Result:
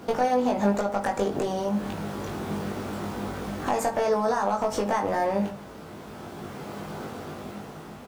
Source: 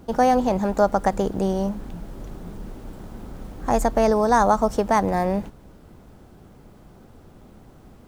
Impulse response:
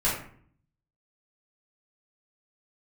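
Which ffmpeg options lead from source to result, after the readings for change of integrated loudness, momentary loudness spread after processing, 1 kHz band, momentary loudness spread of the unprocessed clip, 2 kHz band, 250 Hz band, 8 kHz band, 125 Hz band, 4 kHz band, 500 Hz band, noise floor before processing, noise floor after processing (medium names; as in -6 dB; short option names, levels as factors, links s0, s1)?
-6.5 dB, 16 LU, -5.0 dB, 21 LU, -2.5 dB, -4.0 dB, -2.0 dB, -3.5 dB, +0.5 dB, -4.0 dB, -49 dBFS, -42 dBFS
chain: -filter_complex "[0:a]highpass=140,equalizer=f=2100:w=0.3:g=6,dynaudnorm=f=320:g=9:m=5.01,alimiter=limit=0.251:level=0:latency=1:release=119,acompressor=threshold=0.0447:ratio=4,volume=11.9,asoftclip=hard,volume=0.0841,asplit=2[s0][s1];[s1]adelay=20,volume=0.708[s2];[s0][s2]amix=inputs=2:normalize=0,asplit=2[s3][s4];[1:a]atrim=start_sample=2205[s5];[s4][s5]afir=irnorm=-1:irlink=0,volume=0.141[s6];[s3][s6]amix=inputs=2:normalize=0,volume=1.19"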